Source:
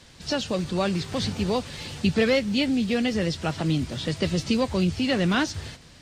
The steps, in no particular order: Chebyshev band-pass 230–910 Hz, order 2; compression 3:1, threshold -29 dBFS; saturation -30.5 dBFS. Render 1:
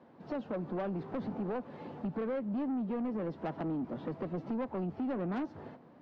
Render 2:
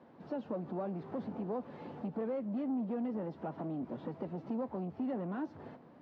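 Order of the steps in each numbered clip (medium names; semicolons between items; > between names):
Chebyshev band-pass > compression > saturation; compression > saturation > Chebyshev band-pass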